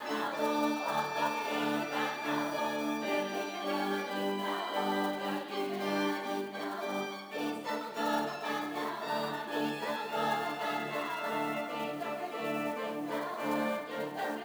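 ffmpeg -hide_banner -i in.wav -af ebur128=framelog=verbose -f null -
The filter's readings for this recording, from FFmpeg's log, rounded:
Integrated loudness:
  I:         -34.3 LUFS
  Threshold: -44.3 LUFS
Loudness range:
  LRA:         2.3 LU
  Threshold: -54.4 LUFS
  LRA low:   -35.4 LUFS
  LRA high:  -33.1 LUFS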